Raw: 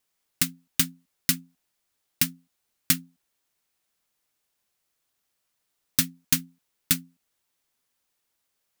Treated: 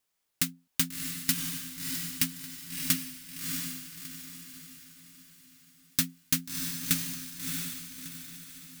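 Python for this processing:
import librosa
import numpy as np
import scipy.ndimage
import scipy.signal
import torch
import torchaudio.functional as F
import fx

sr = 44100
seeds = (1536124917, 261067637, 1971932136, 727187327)

p1 = 10.0 ** (-18.0 / 20.0) * (np.abs((x / 10.0 ** (-18.0 / 20.0) + 3.0) % 4.0 - 2.0) - 1.0)
p2 = x + (p1 * 10.0 ** (-7.0 / 20.0))
p3 = fx.echo_diffused(p2, sr, ms=661, feedback_pct=43, wet_db=-3.0)
y = p3 * 10.0 ** (-5.5 / 20.0)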